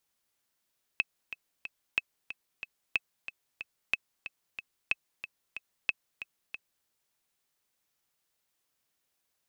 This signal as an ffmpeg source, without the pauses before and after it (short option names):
-f lavfi -i "aevalsrc='pow(10,(-12.5-12.5*gte(mod(t,3*60/184),60/184))/20)*sin(2*PI*2590*mod(t,60/184))*exp(-6.91*mod(t,60/184)/0.03)':d=5.86:s=44100"